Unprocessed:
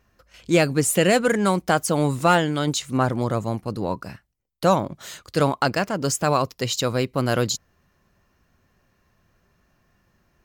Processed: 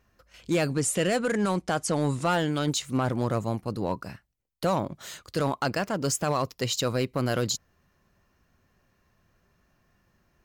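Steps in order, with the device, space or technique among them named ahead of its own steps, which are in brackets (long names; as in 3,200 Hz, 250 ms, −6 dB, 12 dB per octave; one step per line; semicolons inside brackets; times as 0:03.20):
0:00.70–0:02.34: low-pass filter 10,000 Hz 24 dB per octave
limiter into clipper (brickwall limiter −12 dBFS, peak gain reduction 5.5 dB; hard clipping −15 dBFS, distortion −21 dB)
level −3 dB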